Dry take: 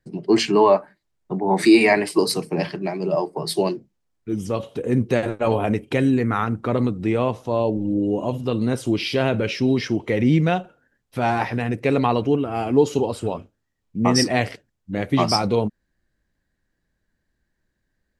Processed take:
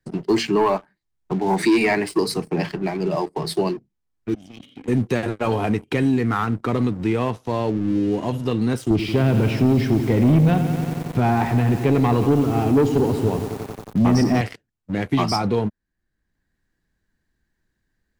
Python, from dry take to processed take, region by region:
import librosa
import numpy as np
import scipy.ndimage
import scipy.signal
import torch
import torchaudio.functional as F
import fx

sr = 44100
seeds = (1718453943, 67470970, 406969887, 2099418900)

y = fx.chain(x, sr, fx.vowel_filter(vowel='i'),
    fx.peak_eq(hz=450.0, db=-11.0, octaves=1.6),
    fx.env_flatten(amount_pct=70), at=(4.34, 4.88))
y = fx.chain(y, sr, fx.tilt_eq(slope=-3.0),
    fx.echo_crushed(ms=90, feedback_pct=80, bits=6, wet_db=-11.5), at=(8.9, 14.41))
y = fx.peak_eq(y, sr, hz=570.0, db=-7.0, octaves=0.37)
y = fx.leveller(y, sr, passes=2)
y = fx.band_squash(y, sr, depth_pct=40)
y = y * librosa.db_to_amplitude(-7.5)